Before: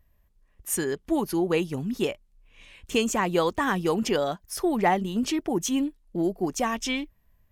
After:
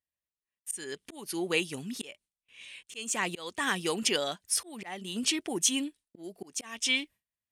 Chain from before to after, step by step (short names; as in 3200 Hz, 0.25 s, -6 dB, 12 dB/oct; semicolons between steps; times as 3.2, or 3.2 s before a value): auto swell 0.328 s; weighting filter D; gate with hold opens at -49 dBFS; HPF 47 Hz; bell 9200 Hz +14 dB 0.52 oct; gain -6.5 dB